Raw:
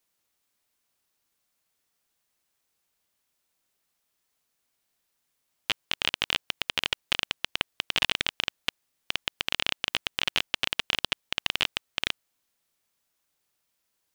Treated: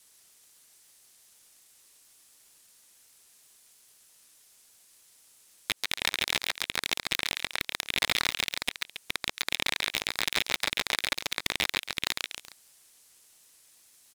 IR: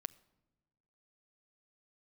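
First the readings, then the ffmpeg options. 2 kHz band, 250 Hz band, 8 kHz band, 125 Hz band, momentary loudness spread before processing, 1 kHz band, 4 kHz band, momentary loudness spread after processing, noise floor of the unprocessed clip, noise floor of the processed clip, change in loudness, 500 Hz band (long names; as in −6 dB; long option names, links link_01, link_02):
+0.5 dB, +0.5 dB, +6.5 dB, −1.0 dB, 6 LU, +0.5 dB, −2.0 dB, 6 LU, −78 dBFS, −69 dBFS, −0.5 dB, +0.5 dB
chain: -filter_complex "[0:a]aderivative,asplit=2[link_01][link_02];[link_02]acompressor=threshold=-53dB:ratio=6,volume=1dB[link_03];[link_01][link_03]amix=inputs=2:normalize=0,equalizer=frequency=1100:width_type=o:width=0.61:gain=7,asplit=2[link_04][link_05];[link_05]aecho=0:1:138|276|414:0.335|0.1|0.0301[link_06];[link_04][link_06]amix=inputs=2:normalize=0,aeval=exprs='0.355*sin(PI/2*3.55*val(0)/0.355)':channel_layout=same,acrossover=split=3300[link_07][link_08];[link_08]acompressor=threshold=-31dB:ratio=4:attack=1:release=60[link_09];[link_07][link_09]amix=inputs=2:normalize=0,lowpass=frequency=11000:width=0.5412,lowpass=frequency=11000:width=1.3066,aeval=exprs='val(0)*sgn(sin(2*PI*720*n/s))':channel_layout=same"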